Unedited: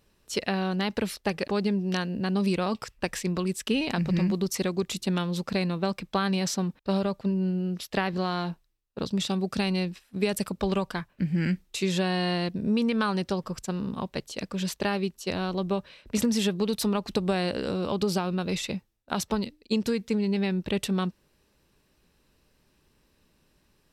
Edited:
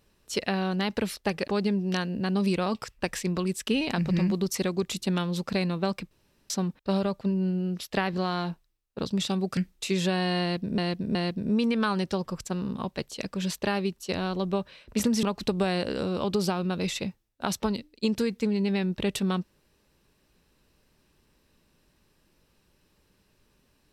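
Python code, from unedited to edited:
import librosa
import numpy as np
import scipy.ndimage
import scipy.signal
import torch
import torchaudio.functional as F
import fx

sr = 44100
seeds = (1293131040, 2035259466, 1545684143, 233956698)

y = fx.edit(x, sr, fx.room_tone_fill(start_s=6.11, length_s=0.39),
    fx.cut(start_s=9.57, length_s=1.92),
    fx.repeat(start_s=12.33, length_s=0.37, count=3),
    fx.cut(start_s=16.41, length_s=0.5), tone=tone)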